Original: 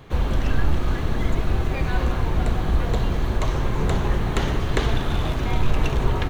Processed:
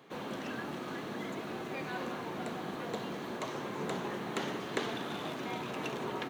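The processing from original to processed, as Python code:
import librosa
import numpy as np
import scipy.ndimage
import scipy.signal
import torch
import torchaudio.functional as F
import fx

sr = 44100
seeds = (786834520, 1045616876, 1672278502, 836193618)

y = scipy.signal.sosfilt(scipy.signal.butter(4, 190.0, 'highpass', fs=sr, output='sos'), x)
y = F.gain(torch.from_numpy(y), -9.0).numpy()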